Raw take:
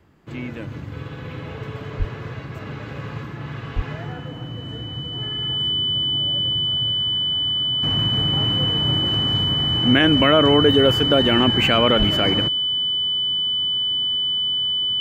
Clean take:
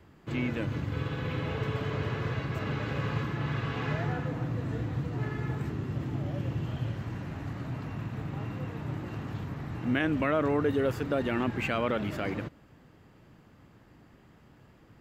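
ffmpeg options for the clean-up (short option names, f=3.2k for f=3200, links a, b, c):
-filter_complex "[0:a]bandreject=f=3k:w=30,asplit=3[a][b][c];[a]afade=t=out:st=1.98:d=0.02[d];[b]highpass=f=140:w=0.5412,highpass=f=140:w=1.3066,afade=t=in:st=1.98:d=0.02,afade=t=out:st=2.1:d=0.02[e];[c]afade=t=in:st=2.1:d=0.02[f];[d][e][f]amix=inputs=3:normalize=0,asplit=3[g][h][i];[g]afade=t=out:st=3.75:d=0.02[j];[h]highpass=f=140:w=0.5412,highpass=f=140:w=1.3066,afade=t=in:st=3.75:d=0.02,afade=t=out:st=3.87:d=0.02[k];[i]afade=t=in:st=3.87:d=0.02[l];[j][k][l]amix=inputs=3:normalize=0,asplit=3[m][n][o];[m]afade=t=out:st=11.98:d=0.02[p];[n]highpass=f=140:w=0.5412,highpass=f=140:w=1.3066,afade=t=in:st=11.98:d=0.02,afade=t=out:st=12.1:d=0.02[q];[o]afade=t=in:st=12.1:d=0.02[r];[p][q][r]amix=inputs=3:normalize=0,asetnsamples=n=441:p=0,asendcmd='7.83 volume volume -11.5dB',volume=0dB"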